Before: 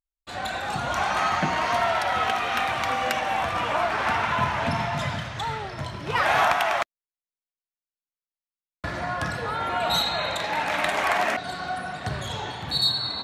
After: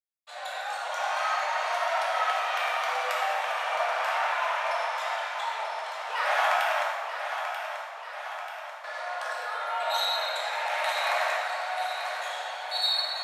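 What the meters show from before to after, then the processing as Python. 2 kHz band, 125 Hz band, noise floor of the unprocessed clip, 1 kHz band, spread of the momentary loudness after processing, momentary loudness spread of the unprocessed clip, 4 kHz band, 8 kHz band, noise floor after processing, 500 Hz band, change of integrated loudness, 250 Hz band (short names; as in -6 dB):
-2.5 dB, under -40 dB, under -85 dBFS, -3.0 dB, 11 LU, 9 LU, -3.0 dB, -3.5 dB, -40 dBFS, -3.0 dB, -3.5 dB, under -35 dB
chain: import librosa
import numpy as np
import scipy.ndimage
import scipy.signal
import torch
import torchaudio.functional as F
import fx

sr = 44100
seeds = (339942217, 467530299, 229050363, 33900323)

p1 = scipy.signal.sosfilt(scipy.signal.butter(8, 540.0, 'highpass', fs=sr, output='sos'), x)
p2 = p1 + fx.echo_feedback(p1, sr, ms=937, feedback_pct=59, wet_db=-8, dry=0)
p3 = fx.rev_plate(p2, sr, seeds[0], rt60_s=1.8, hf_ratio=0.7, predelay_ms=0, drr_db=-3.5)
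y = p3 * librosa.db_to_amplitude(-8.5)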